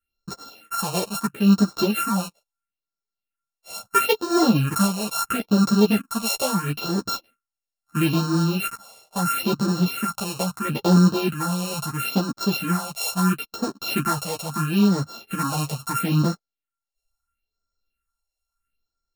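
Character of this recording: a buzz of ramps at a fixed pitch in blocks of 32 samples; phasing stages 4, 0.75 Hz, lowest notch 250–2600 Hz; tremolo triangle 1.3 Hz, depth 35%; a shimmering, thickened sound

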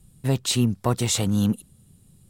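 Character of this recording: noise floor -57 dBFS; spectral tilt -5.0 dB/oct

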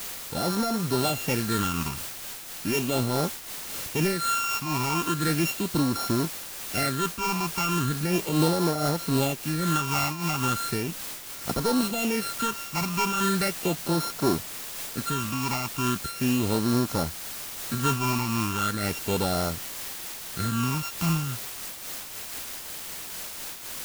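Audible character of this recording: a buzz of ramps at a fixed pitch in blocks of 32 samples; phasing stages 8, 0.37 Hz, lowest notch 480–2700 Hz; a quantiser's noise floor 6-bit, dither triangular; noise-modulated level

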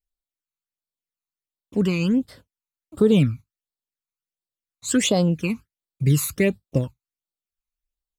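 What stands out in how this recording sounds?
phasing stages 12, 1.4 Hz, lowest notch 530–2300 Hz

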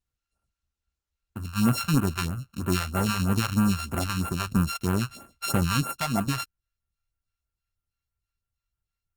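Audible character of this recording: a buzz of ramps at a fixed pitch in blocks of 32 samples; phasing stages 2, 3.1 Hz, lowest notch 240–4800 Hz; Opus

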